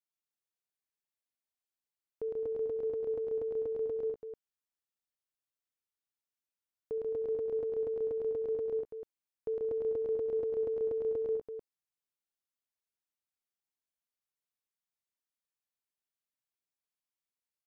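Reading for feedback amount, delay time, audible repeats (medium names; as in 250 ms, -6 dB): no regular repeats, 69 ms, 3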